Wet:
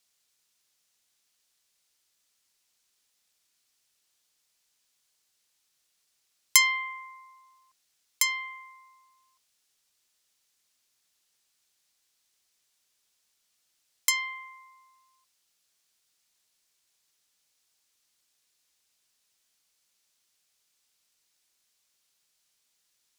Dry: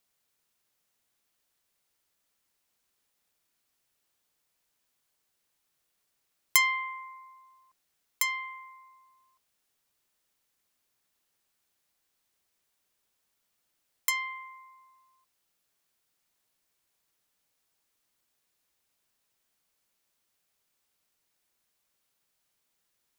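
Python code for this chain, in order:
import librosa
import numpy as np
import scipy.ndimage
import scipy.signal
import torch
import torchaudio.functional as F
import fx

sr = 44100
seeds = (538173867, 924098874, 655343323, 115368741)

y = fx.peak_eq(x, sr, hz=5600.0, db=11.5, octaves=2.6)
y = y * 10.0 ** (-3.5 / 20.0)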